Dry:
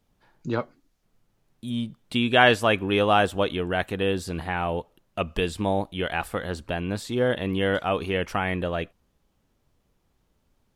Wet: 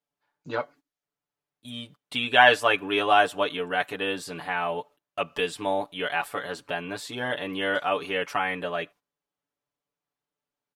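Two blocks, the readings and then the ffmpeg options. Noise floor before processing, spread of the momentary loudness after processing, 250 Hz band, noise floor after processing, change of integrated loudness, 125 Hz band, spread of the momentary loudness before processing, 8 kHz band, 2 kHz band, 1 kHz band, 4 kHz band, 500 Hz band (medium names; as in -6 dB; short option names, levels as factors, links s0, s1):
-71 dBFS, 14 LU, -7.5 dB, under -85 dBFS, -0.5 dB, -13.0 dB, 12 LU, -0.5 dB, +2.0 dB, +1.5 dB, +0.5 dB, -2.5 dB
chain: -af "highpass=f=990:p=1,highshelf=f=2300:g=-6,aecho=1:1:6.9:0.91,agate=range=0.178:threshold=0.00251:ratio=16:detection=peak,volume=1.33"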